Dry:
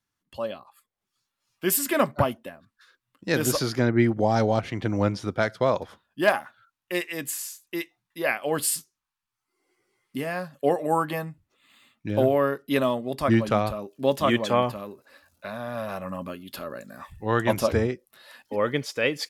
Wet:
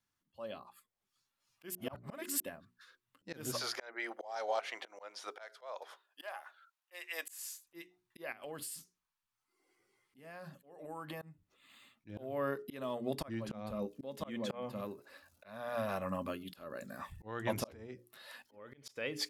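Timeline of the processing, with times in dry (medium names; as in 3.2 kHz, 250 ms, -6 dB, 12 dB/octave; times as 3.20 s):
1.75–2.40 s: reverse
3.53–7.66 s: high-pass 570 Hz 24 dB/octave
8.32–11.22 s: compression 16:1, threshold -36 dBFS
13.51–14.81 s: small resonant body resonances 220/500/2100/3700 Hz, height 10 dB, ringing for 80 ms
17.72–18.86 s: compression 20:1, threshold -34 dBFS
whole clip: hum notches 60/120/180/240/300/360/420 Hz; compression 3:1, threshold -27 dBFS; slow attack 320 ms; trim -3.5 dB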